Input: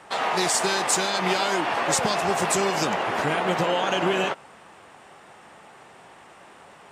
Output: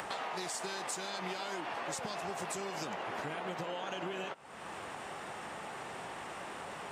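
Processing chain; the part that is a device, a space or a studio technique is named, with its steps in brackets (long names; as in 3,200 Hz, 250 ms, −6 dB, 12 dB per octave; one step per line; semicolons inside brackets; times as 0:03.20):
upward and downward compression (upward compression, threshold −27 dBFS; downward compressor 6 to 1, threshold −31 dBFS, peak gain reduction 12.5 dB)
level −5.5 dB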